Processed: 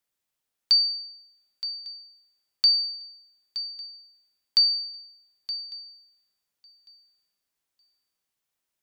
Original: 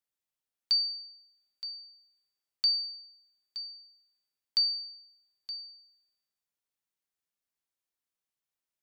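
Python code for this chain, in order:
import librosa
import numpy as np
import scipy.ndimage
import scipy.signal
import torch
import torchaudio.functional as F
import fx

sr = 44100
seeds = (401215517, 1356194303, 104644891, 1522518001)

y = fx.echo_feedback(x, sr, ms=1151, feedback_pct=24, wet_db=-23.5)
y = y * librosa.db_to_amplitude(7.0)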